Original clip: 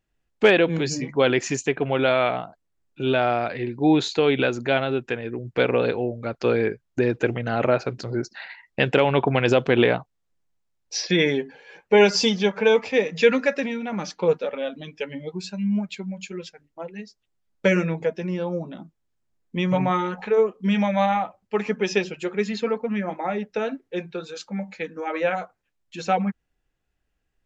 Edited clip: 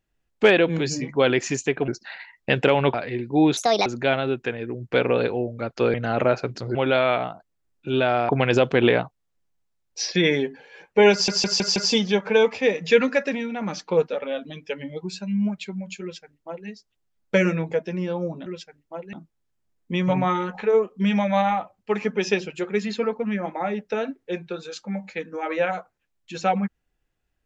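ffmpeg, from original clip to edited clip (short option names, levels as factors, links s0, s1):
-filter_complex "[0:a]asplit=14[s0][s1][s2][s3][s4][s5][s6][s7][s8][s9][s10][s11][s12][s13];[s0]atrim=end=1.882[s14];[s1]atrim=start=8.178:end=9.242[s15];[s2]atrim=start=3.418:end=4.054[s16];[s3]atrim=start=4.05:end=4.5,asetpts=PTS-STARTPTS,asetrate=68355,aresample=44100,atrim=end_sample=12803,asetpts=PTS-STARTPTS[s17];[s4]atrim=start=4.496:end=6.582[s18];[s5]atrim=start=7.368:end=8.182[s19];[s6]atrim=start=1.878:end=3.422[s20];[s7]atrim=start=9.238:end=12.232[s21];[s8]atrim=start=12.068:end=12.232[s22];[s9]atrim=start=12.068:end=12.232[s23];[s10]atrim=start=12.068:end=12.232[s24];[s11]atrim=start=12.068:end=18.772[s25];[s12]atrim=start=16.318:end=16.992[s26];[s13]atrim=start=18.768[s27];[s14][s15]acrossfade=d=0.004:c1=hsin:c2=hsin[s28];[s28][s16]acrossfade=d=0.004:c1=hsin:c2=hsin[s29];[s29][s17]acrossfade=d=0.004:c1=hsin:c2=hsin[s30];[s30][s18]acrossfade=d=0.004:c1=hsin:c2=hsin[s31];[s31][s19]acrossfade=d=0.004:c1=hsin:c2=hsin[s32];[s32][s20]acrossfade=d=0.004:c1=hsin:c2=hsin[s33];[s33][s21]acrossfade=d=0.004:c1=hsin:c2=hsin[s34];[s34][s22]acrossfade=d=0.004:c1=hsin:c2=hsin[s35];[s35][s23]acrossfade=d=0.004:c1=hsin:c2=hsin[s36];[s36][s24]acrossfade=d=0.004:c1=hsin:c2=hsin[s37];[s37][s25]acrossfade=d=0.004:c1=hsin:c2=hsin[s38];[s38][s26]acrossfade=d=0.004:c1=hsin:c2=hsin[s39];[s39][s27]acrossfade=d=0.004:c1=hsin:c2=hsin"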